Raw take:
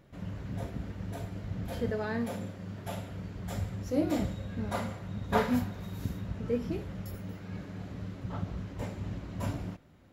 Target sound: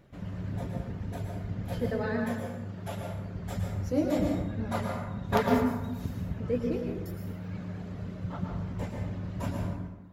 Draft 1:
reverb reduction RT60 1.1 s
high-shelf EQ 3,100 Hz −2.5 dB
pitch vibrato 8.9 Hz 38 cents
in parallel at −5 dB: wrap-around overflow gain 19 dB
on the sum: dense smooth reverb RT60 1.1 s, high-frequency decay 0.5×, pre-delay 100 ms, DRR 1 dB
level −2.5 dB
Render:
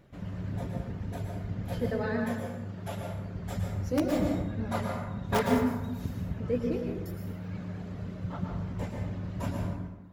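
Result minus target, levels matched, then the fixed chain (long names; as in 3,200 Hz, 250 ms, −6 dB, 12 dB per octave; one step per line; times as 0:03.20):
wrap-around overflow: distortion +11 dB
reverb reduction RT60 1.1 s
high-shelf EQ 3,100 Hz −2.5 dB
pitch vibrato 8.9 Hz 38 cents
in parallel at −5 dB: wrap-around overflow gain 12 dB
on the sum: dense smooth reverb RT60 1.1 s, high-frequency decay 0.5×, pre-delay 100 ms, DRR 1 dB
level −2.5 dB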